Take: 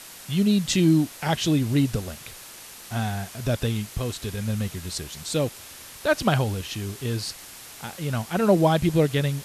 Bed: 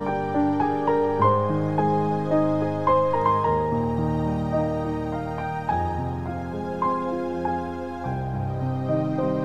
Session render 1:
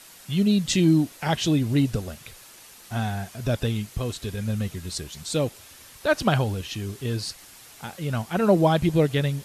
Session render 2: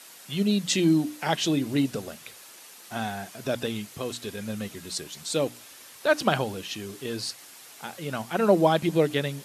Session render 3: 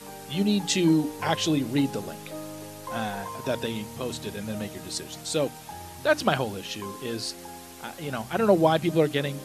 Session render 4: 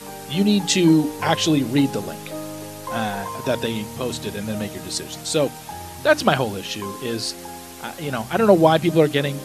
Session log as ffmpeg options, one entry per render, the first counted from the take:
-af "afftdn=nr=6:nf=-43"
-af "highpass=220,bandreject=f=60:t=h:w=6,bandreject=f=120:t=h:w=6,bandreject=f=180:t=h:w=6,bandreject=f=240:t=h:w=6,bandreject=f=300:t=h:w=6"
-filter_complex "[1:a]volume=-17dB[a];[0:a][a]amix=inputs=2:normalize=0"
-af "volume=6dB,alimiter=limit=-1dB:level=0:latency=1"

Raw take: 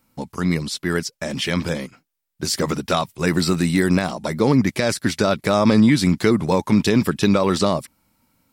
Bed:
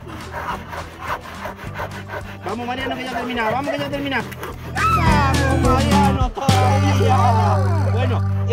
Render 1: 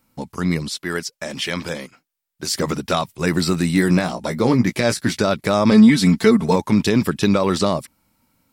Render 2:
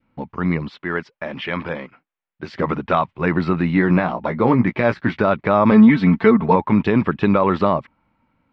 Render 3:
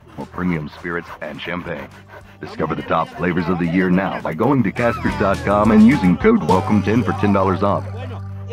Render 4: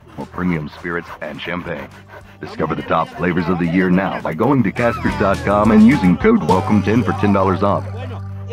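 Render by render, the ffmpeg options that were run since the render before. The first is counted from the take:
-filter_complex "[0:a]asettb=1/sr,asplit=3[a][b][c];[a]atrim=end=0.714[d];[b]atrim=start=0.71:end=2.55,asetpts=PTS-STARTPTS,afade=t=in:d=0.004:c=qsin,afade=t=out:st=1.836:d=0.004:c=qsin,lowshelf=f=270:g=-9[e];[c]atrim=start=2.546[f];[d][e]acrossfade=d=0.004:c1=hsin:c2=qsin[g];[g][f]acrossfade=d=0.004:c1=qsin:c2=hsin,asettb=1/sr,asplit=3[h][i][j];[h]atrim=end=3.744[k];[i]atrim=start=3.74:end=5.17,asetpts=PTS-STARTPTS,afade=t=in:d=0.004:c=qsin,afade=t=out:st=1.426:d=0.004:c=qsin,asplit=2[l][m];[m]adelay=17,volume=-7dB[n];[l][n]amix=inputs=2:normalize=0,atrim=end_sample=63063[o];[j]atrim=start=5.166[p];[k][o]acrossfade=d=0.004:c1=hsin:c2=qsin[q];[q][p]acrossfade=d=0.004:c1=qsin:c2=hsin,asettb=1/sr,asplit=3[r][s][t];[r]atrim=end=5.714[u];[s]atrim=start=5.71:end=6.56,asetpts=PTS-STARTPTS,afade=t=in:d=0.004:c=qsin,afade=t=out:st=0.846:d=0.004:c=qsin,aecho=1:1:4.5:0.77,atrim=end_sample=37485[v];[t]atrim=start=6.556[w];[u][v]acrossfade=d=0.004:c1=hsin:c2=qsin[x];[x][w]acrossfade=d=0.004:c1=qsin:c2=hsin"
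-af "adynamicequalizer=threshold=0.0158:dfrequency=1000:dqfactor=1.5:tfrequency=1000:tqfactor=1.5:attack=5:release=100:ratio=0.375:range=3:mode=boostabove:tftype=bell,lowpass=f=2.7k:w=0.5412,lowpass=f=2.7k:w=1.3066"
-filter_complex "[1:a]volume=-10dB[a];[0:a][a]amix=inputs=2:normalize=0"
-af "volume=1.5dB,alimiter=limit=-2dB:level=0:latency=1"

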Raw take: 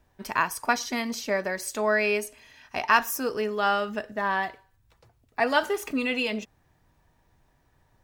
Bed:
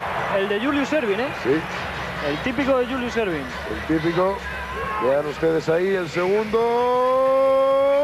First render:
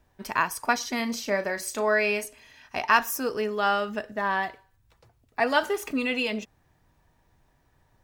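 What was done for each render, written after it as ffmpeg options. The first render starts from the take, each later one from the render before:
-filter_complex "[0:a]asettb=1/sr,asplit=3[a][b][c];[a]atrim=end=0.964[d];[b]atrim=start=0.96:end=2.25,asetpts=PTS-STARTPTS,afade=t=in:d=0.004:c=qsin,afade=t=out:st=1.286:d=0.004:c=qsin,asplit=2[e][f];[f]adelay=35,volume=-10dB[g];[e][g]amix=inputs=2:normalize=0,atrim=end_sample=56889[h];[c]atrim=start=2.246[i];[d][h]acrossfade=d=0.004:c1=hsin:c2=qsin[j];[j][i]acrossfade=d=0.004:c1=qsin:c2=hsin"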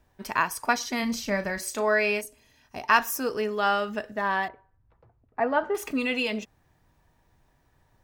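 -filter_complex "[0:a]asplit=3[a][b][c];[a]afade=t=out:st=1.02:d=0.02[d];[b]asubboost=boost=11:cutoff=160,afade=t=in:st=1.02:d=0.02,afade=t=out:st=1.58:d=0.02[e];[c]afade=t=in:st=1.58:d=0.02[f];[d][e][f]amix=inputs=3:normalize=0,asettb=1/sr,asplit=3[g][h][i];[g]atrim=end=2.214[j];[h]atrim=start=2.21:end=2.89,asetpts=PTS-STARTPTS,afade=t=in:d=0.004:c=qsin,afade=t=out:st=0.676:d=0.004:c=qsin,equalizer=f=1.9k:w=0.39:g=-11.5[k];[i]atrim=start=2.886[l];[j][k]acrossfade=d=0.004:c1=hsin:c2=qsin[m];[m][l]acrossfade=d=0.004:c1=qsin:c2=hsin,asettb=1/sr,asplit=3[n][o][p];[n]atrim=end=4.484[q];[o]atrim=start=4.48:end=5.75,asetpts=PTS-STARTPTS,afade=t=in:d=0.004:c=qsin,afade=t=out:st=1.266:d=0.004:c=qsin,lowpass=1.3k[r];[p]atrim=start=5.746[s];[q][r]acrossfade=d=0.004:c1=hsin:c2=qsin[t];[t][s]acrossfade=d=0.004:c1=qsin:c2=hsin"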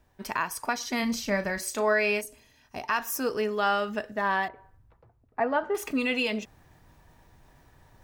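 -af "alimiter=limit=-15dB:level=0:latency=1:release=210,areverse,acompressor=mode=upward:threshold=-47dB:ratio=2.5,areverse"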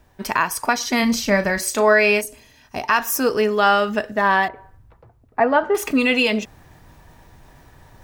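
-af "volume=9.5dB"

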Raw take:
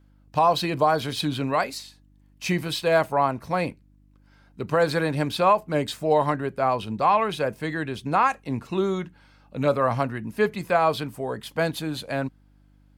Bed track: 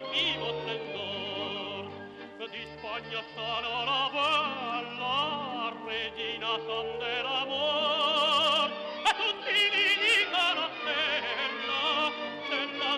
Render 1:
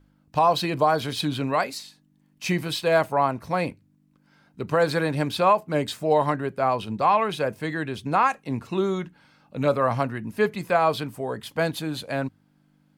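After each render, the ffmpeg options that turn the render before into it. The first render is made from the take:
-af "bandreject=f=50:t=h:w=4,bandreject=f=100:t=h:w=4"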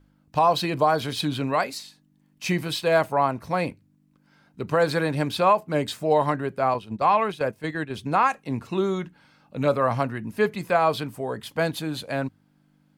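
-filter_complex "[0:a]asettb=1/sr,asplit=3[a][b][c];[a]atrim=end=6.744[d];[b]atrim=start=6.74:end=7.91,asetpts=PTS-STARTPTS,afade=t=in:d=0.004:c=qsin,afade=t=out:st=1.166:d=0.004:c=qsin,agate=range=-9dB:threshold=-30dB:ratio=16:release=100:detection=peak[e];[c]atrim=start=7.906[f];[d][e]acrossfade=d=0.004:c1=hsin:c2=qsin[g];[g][f]acrossfade=d=0.004:c1=qsin:c2=hsin"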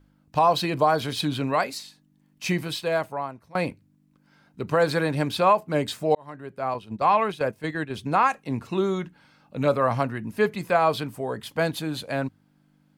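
-filter_complex "[0:a]asplit=3[a][b][c];[a]atrim=end=3.55,asetpts=PTS-STARTPTS,afade=t=out:st=2.45:d=1.1:silence=0.0668344[d];[b]atrim=start=3.55:end=6.15,asetpts=PTS-STARTPTS,afade=t=in:d=0.004:c=hsin:silence=0.0668344,afade=t=out:st=2.596:d=0.004:c=hsin[e];[c]atrim=start=6.15,asetpts=PTS-STARTPTS,afade=t=in:d=0.96[f];[d][e][f]concat=n=3:v=0:a=1"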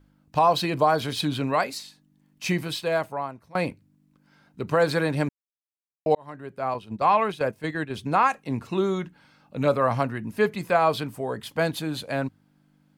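-filter_complex "[0:a]asplit=3[a][b][c];[a]atrim=end=5.29,asetpts=PTS-STARTPTS,afade=t=out:st=5.286:d=0.004:c=hsin[d];[b]atrim=start=5.29:end=6.06,asetpts=PTS-STARTPTS,volume=0[e];[c]atrim=start=6.06,asetpts=PTS-STARTPTS,afade=t=in:d=0.004:c=hsin[f];[d][e][f]concat=n=3:v=0:a=1"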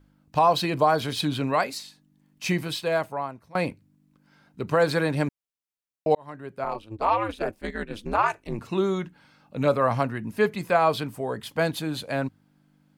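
-filter_complex "[0:a]asettb=1/sr,asplit=3[a][b][c];[a]atrim=end=6.644[d];[b]atrim=start=6.64:end=8.59,asetpts=PTS-STARTPTS,afade=t=in:d=0.004:c=qsin,afade=t=out:st=1.946:d=0.004:c=qsin,aeval=exprs='val(0)*sin(2*PI*110*n/s)':c=same[e];[c]atrim=start=8.586[f];[d][e]acrossfade=d=0.004:c1=hsin:c2=qsin[g];[g][f]acrossfade=d=0.004:c1=qsin:c2=hsin"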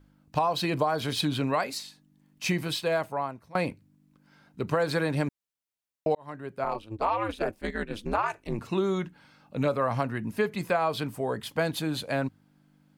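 -af "acompressor=threshold=-22dB:ratio=6"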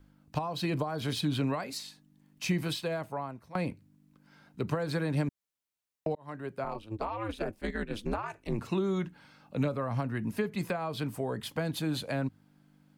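-filter_complex "[0:a]acrossover=split=290[a][b];[b]acompressor=threshold=-34dB:ratio=4[c];[a][c]amix=inputs=2:normalize=0"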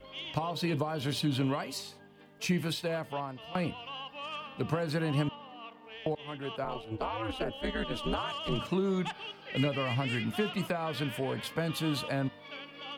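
-filter_complex "[1:a]volume=-13.5dB[a];[0:a][a]amix=inputs=2:normalize=0"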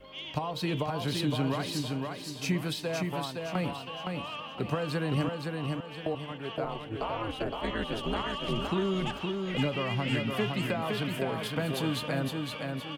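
-af "aecho=1:1:515|1030|1545|2060|2575:0.631|0.24|0.0911|0.0346|0.0132"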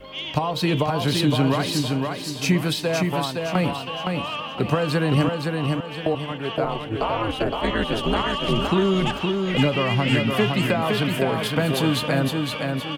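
-af "volume=9.5dB"

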